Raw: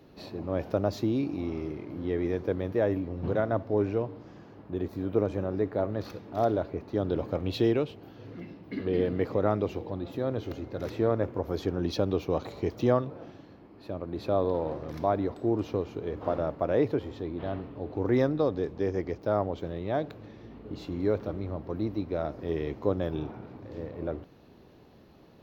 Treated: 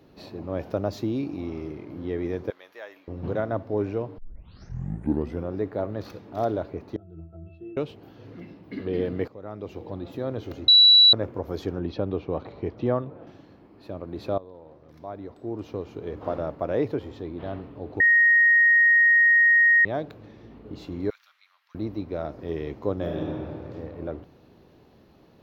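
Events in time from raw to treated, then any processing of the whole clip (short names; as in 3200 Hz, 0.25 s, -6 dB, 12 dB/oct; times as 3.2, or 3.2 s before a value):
2.5–3.08 Bessel high-pass 1700 Hz
4.18 tape start 1.36 s
6.96–7.77 octave resonator E, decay 0.45 s
9.28–9.89 fade in quadratic, from -16.5 dB
10.68–11.13 bleep 3930 Hz -10.5 dBFS
11.79–13.27 air absorption 280 m
14.38–16.07 fade in quadratic, from -18 dB
18–19.85 bleep 1870 Hz -14 dBFS
21.1–21.75 Bessel high-pass 2300 Hz, order 6
22.95–23.54 reverb throw, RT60 2.2 s, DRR -1 dB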